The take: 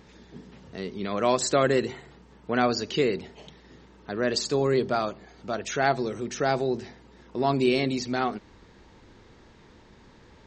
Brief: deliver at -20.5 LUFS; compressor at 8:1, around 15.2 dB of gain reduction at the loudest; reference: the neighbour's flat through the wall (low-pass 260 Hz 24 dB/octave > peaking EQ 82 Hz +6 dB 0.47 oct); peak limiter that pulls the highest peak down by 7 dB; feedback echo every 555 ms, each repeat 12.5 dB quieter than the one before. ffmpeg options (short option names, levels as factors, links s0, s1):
-af "acompressor=threshold=0.02:ratio=8,alimiter=level_in=1.88:limit=0.0631:level=0:latency=1,volume=0.531,lowpass=f=260:w=0.5412,lowpass=f=260:w=1.3066,equalizer=f=82:t=o:w=0.47:g=6,aecho=1:1:555|1110|1665:0.237|0.0569|0.0137,volume=26.6"